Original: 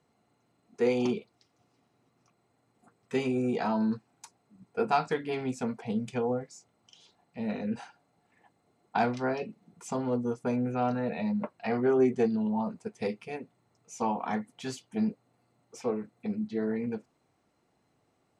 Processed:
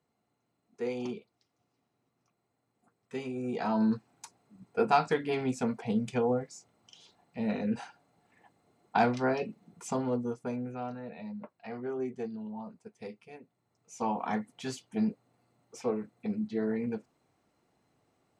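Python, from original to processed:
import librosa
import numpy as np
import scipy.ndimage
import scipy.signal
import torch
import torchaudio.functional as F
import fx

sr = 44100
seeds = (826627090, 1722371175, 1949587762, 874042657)

y = fx.gain(x, sr, db=fx.line((3.35, -8.0), (3.83, 1.5), (9.86, 1.5), (11.0, -11.0), (13.41, -11.0), (14.17, -0.5)))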